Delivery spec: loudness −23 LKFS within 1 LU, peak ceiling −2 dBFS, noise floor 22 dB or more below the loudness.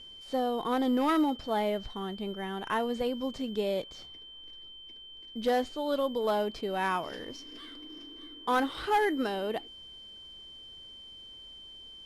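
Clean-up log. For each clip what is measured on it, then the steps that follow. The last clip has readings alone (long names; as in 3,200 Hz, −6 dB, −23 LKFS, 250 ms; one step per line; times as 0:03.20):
share of clipped samples 0.3%; peaks flattened at −20.5 dBFS; interfering tone 3,100 Hz; level of the tone −46 dBFS; integrated loudness −31.0 LKFS; sample peak −20.5 dBFS; target loudness −23.0 LKFS
→ clipped peaks rebuilt −20.5 dBFS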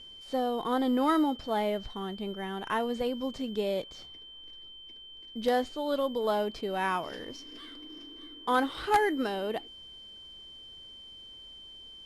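share of clipped samples 0.0%; interfering tone 3,100 Hz; level of the tone −46 dBFS
→ notch filter 3,100 Hz, Q 30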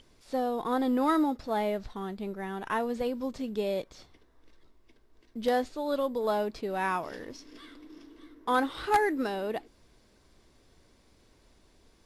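interfering tone none found; integrated loudness −30.5 LKFS; sample peak −11.5 dBFS; target loudness −23.0 LKFS
→ level +7.5 dB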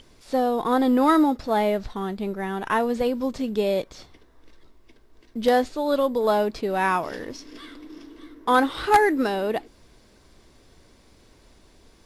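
integrated loudness −23.0 LKFS; sample peak −4.0 dBFS; background noise floor −56 dBFS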